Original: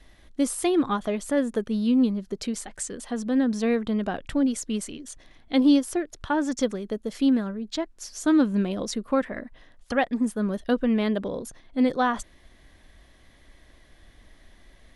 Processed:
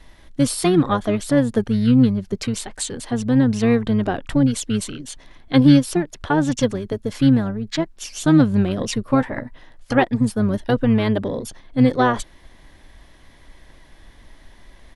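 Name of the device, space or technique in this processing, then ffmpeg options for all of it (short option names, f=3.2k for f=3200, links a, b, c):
octave pedal: -filter_complex "[0:a]asplit=3[a][b][c];[a]afade=t=out:st=9.03:d=0.02[d];[b]asplit=2[e][f];[f]adelay=16,volume=-10.5dB[g];[e][g]amix=inputs=2:normalize=0,afade=t=in:st=9.03:d=0.02,afade=t=out:st=10.02:d=0.02[h];[c]afade=t=in:st=10.02:d=0.02[i];[d][h][i]amix=inputs=3:normalize=0,asplit=2[j][k];[k]asetrate=22050,aresample=44100,atempo=2,volume=-5dB[l];[j][l]amix=inputs=2:normalize=0,volume=5dB"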